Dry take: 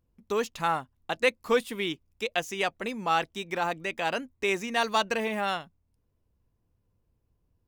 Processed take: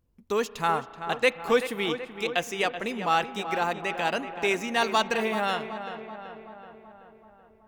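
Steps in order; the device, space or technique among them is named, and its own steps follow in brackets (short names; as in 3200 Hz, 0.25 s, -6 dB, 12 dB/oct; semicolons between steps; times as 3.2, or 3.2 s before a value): dub delay into a spring reverb (darkening echo 0.38 s, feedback 61%, low-pass 2600 Hz, level -10 dB; spring tank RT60 3.6 s, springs 34 ms, chirp 50 ms, DRR 17.5 dB); gain +1.5 dB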